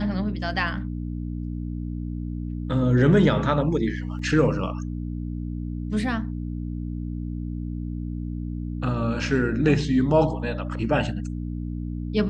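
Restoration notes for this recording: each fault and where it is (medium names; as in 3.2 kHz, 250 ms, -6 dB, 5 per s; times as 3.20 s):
hum 60 Hz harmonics 5 -30 dBFS
4.19 s: dropout 2.6 ms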